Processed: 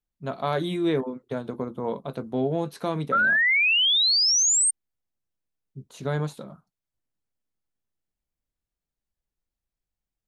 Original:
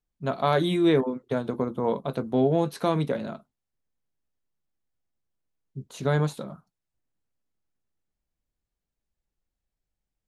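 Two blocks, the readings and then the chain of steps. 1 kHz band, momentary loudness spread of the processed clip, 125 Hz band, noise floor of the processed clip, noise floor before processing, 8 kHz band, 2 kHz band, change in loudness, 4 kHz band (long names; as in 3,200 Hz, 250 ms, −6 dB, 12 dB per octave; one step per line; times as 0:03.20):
0.0 dB, 17 LU, −3.5 dB, below −85 dBFS, below −85 dBFS, +27.5 dB, +15.5 dB, +4.5 dB, +17.5 dB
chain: sound drawn into the spectrogram rise, 0:03.12–0:04.71, 1,300–8,900 Hz −17 dBFS
level −3.5 dB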